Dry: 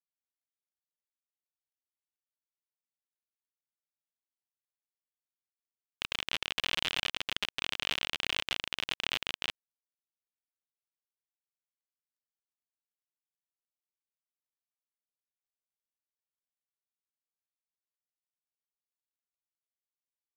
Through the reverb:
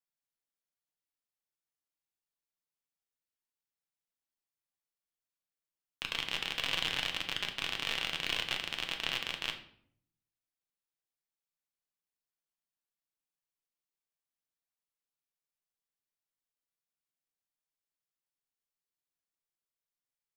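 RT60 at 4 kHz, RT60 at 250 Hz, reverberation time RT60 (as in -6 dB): 0.45 s, 0.90 s, 0.65 s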